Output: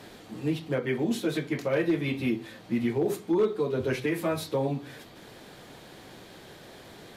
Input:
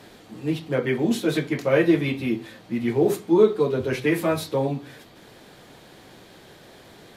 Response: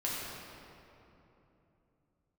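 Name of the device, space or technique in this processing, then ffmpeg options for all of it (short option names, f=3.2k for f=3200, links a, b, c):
clipper into limiter: -af "asoftclip=type=hard:threshold=-10.5dB,alimiter=limit=-18dB:level=0:latency=1:release=423"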